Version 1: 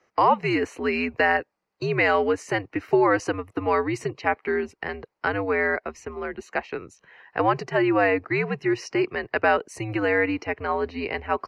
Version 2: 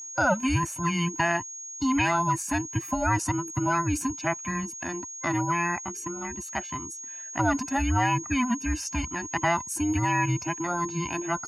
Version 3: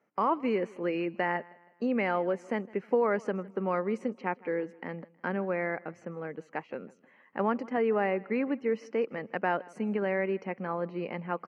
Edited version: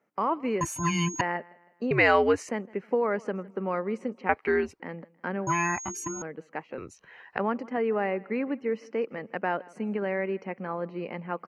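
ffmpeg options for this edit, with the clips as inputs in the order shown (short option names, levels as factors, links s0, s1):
-filter_complex "[1:a]asplit=2[s0][s1];[0:a]asplit=3[s2][s3][s4];[2:a]asplit=6[s5][s6][s7][s8][s9][s10];[s5]atrim=end=0.612[s11];[s0]atrim=start=0.608:end=1.212[s12];[s6]atrim=start=1.208:end=1.912[s13];[s2]atrim=start=1.908:end=2.492[s14];[s7]atrim=start=2.488:end=4.292[s15];[s3]atrim=start=4.288:end=4.802[s16];[s8]atrim=start=4.798:end=5.472[s17];[s1]atrim=start=5.468:end=6.222[s18];[s9]atrim=start=6.218:end=6.782[s19];[s4]atrim=start=6.778:end=7.382[s20];[s10]atrim=start=7.378[s21];[s11][s12]acrossfade=d=0.004:c1=hsin:c2=hsin[s22];[s22][s13]acrossfade=d=0.004:c1=hsin:c2=hsin[s23];[s23][s14]acrossfade=d=0.004:c1=hsin:c2=hsin[s24];[s24][s15]acrossfade=d=0.004:c1=hsin:c2=hsin[s25];[s25][s16]acrossfade=d=0.004:c1=hsin:c2=hsin[s26];[s26][s17]acrossfade=d=0.004:c1=hsin:c2=hsin[s27];[s27][s18]acrossfade=d=0.004:c1=hsin:c2=hsin[s28];[s28][s19]acrossfade=d=0.004:c1=hsin:c2=hsin[s29];[s29][s20]acrossfade=d=0.004:c1=hsin:c2=hsin[s30];[s30][s21]acrossfade=d=0.004:c1=hsin:c2=hsin"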